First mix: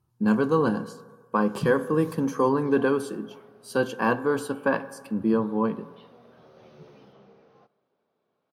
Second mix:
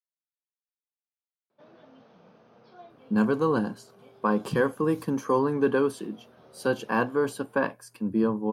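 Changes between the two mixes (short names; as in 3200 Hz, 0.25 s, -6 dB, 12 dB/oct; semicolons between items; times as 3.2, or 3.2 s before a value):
speech: entry +2.90 s; reverb: off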